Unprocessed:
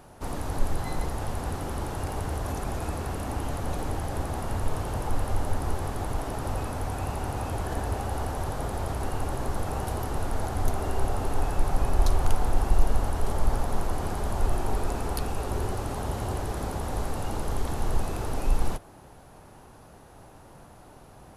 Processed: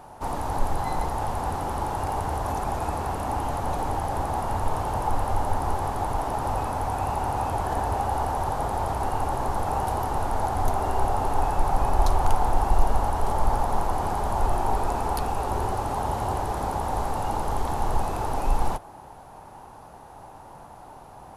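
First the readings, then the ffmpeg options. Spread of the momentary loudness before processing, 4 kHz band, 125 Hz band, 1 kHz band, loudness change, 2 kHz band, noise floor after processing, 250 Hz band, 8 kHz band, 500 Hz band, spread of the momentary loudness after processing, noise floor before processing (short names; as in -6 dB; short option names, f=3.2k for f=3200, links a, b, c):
22 LU, +0.5 dB, 0.0 dB, +9.5 dB, +4.0 dB, +2.0 dB, -46 dBFS, +0.5 dB, 0.0 dB, +3.5 dB, 20 LU, -50 dBFS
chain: -af "equalizer=f=870:w=1.7:g=11.5"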